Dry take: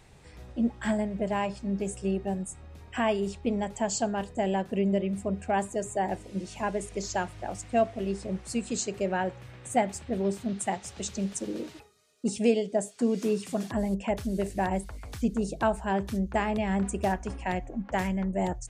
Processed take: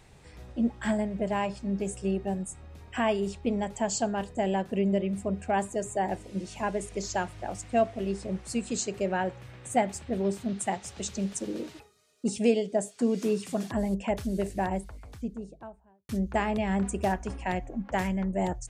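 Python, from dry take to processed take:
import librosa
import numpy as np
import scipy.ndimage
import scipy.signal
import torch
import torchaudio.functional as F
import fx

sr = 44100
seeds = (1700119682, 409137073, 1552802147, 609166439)

y = fx.studio_fade_out(x, sr, start_s=14.28, length_s=1.81)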